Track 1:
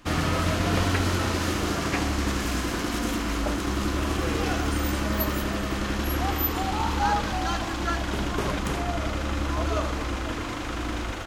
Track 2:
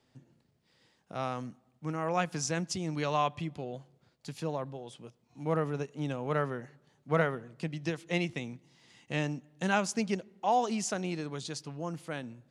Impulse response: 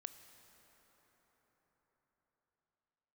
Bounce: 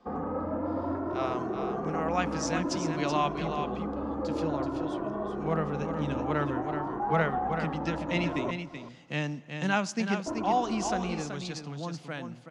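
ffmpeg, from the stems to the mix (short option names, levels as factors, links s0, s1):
-filter_complex "[0:a]lowpass=f=1000:w=0.5412,lowpass=f=1000:w=1.3066,alimiter=limit=0.1:level=0:latency=1:release=19,asplit=2[s0][s1];[s1]adelay=2.1,afreqshift=0.54[s2];[s0][s2]amix=inputs=2:normalize=1,volume=1.12,asplit=3[s3][s4][s5];[s3]atrim=end=8.51,asetpts=PTS-STARTPTS,afade=t=out:st=8.506:d=0.004:c=hsin[s6];[s4]atrim=start=8.51:end=10.26,asetpts=PTS-STARTPTS,volume=0[s7];[s5]atrim=start=10.26,asetpts=PTS-STARTPTS,afade=t=in:d=0.004:c=hsin[s8];[s6][s7][s8]concat=n=3:v=0:a=1,asplit=3[s9][s10][s11];[s10]volume=0.316[s12];[s11]volume=0.224[s13];[1:a]asubboost=boost=6:cutoff=150,volume=0.944,asplit=3[s14][s15][s16];[s15]volume=0.596[s17];[s16]volume=0.596[s18];[2:a]atrim=start_sample=2205[s19];[s12][s17]amix=inputs=2:normalize=0[s20];[s20][s19]afir=irnorm=-1:irlink=0[s21];[s13][s18]amix=inputs=2:normalize=0,aecho=0:1:379:1[s22];[s9][s14][s21][s22]amix=inputs=4:normalize=0,acrossover=split=210 6900:gain=0.141 1 0.112[s23][s24][s25];[s23][s24][s25]amix=inputs=3:normalize=0"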